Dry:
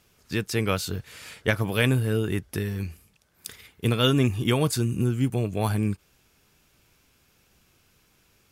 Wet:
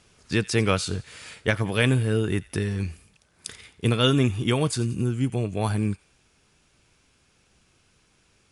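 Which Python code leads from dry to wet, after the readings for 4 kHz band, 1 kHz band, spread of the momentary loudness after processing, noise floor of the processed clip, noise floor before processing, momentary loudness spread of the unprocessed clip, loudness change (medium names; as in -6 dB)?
+1.0 dB, +1.0 dB, 14 LU, -64 dBFS, -64 dBFS, 15 LU, +1.0 dB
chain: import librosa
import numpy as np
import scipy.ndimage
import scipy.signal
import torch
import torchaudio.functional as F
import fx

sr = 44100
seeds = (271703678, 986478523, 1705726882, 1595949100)

y = fx.brickwall_lowpass(x, sr, high_hz=11000.0)
y = fx.echo_wet_highpass(y, sr, ms=88, feedback_pct=47, hz=1700.0, wet_db=-18)
y = fx.rider(y, sr, range_db=10, speed_s=2.0)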